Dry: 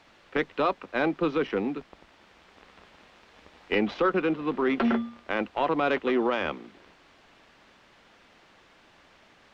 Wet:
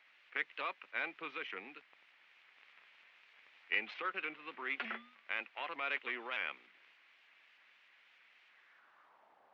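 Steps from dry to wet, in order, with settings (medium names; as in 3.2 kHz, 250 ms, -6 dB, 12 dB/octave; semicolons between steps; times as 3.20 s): band-pass sweep 2.3 kHz -> 800 Hz, 8.50–9.31 s; vibrato with a chosen wave saw up 3.3 Hz, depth 100 cents; trim -2 dB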